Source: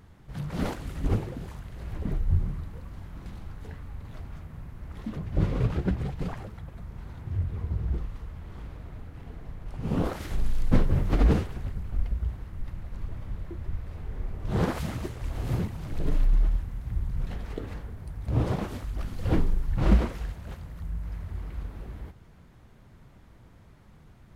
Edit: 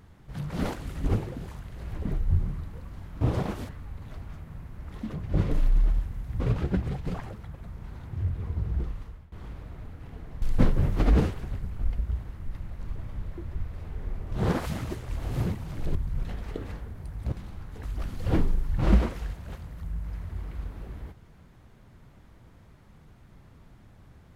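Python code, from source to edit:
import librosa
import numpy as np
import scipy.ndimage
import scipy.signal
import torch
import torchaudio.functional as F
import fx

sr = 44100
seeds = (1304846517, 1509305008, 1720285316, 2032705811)

y = fx.edit(x, sr, fx.swap(start_s=3.21, length_s=0.51, other_s=18.34, other_length_s=0.48),
    fx.fade_out_to(start_s=8.12, length_s=0.34, floor_db=-19.5),
    fx.cut(start_s=9.56, length_s=0.99),
    fx.move(start_s=16.08, length_s=0.89, to_s=5.54), tone=tone)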